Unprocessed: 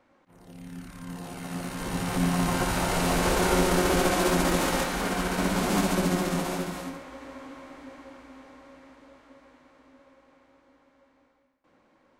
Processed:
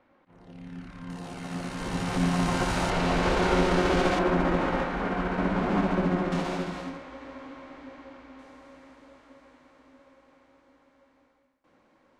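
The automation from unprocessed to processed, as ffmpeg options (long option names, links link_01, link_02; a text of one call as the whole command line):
ffmpeg -i in.wav -af "asetnsamples=nb_out_samples=441:pad=0,asendcmd='1.1 lowpass f 6900;2.9 lowpass f 4100;4.19 lowpass f 2000;6.32 lowpass f 4500;8.39 lowpass f 11000',lowpass=3700" out.wav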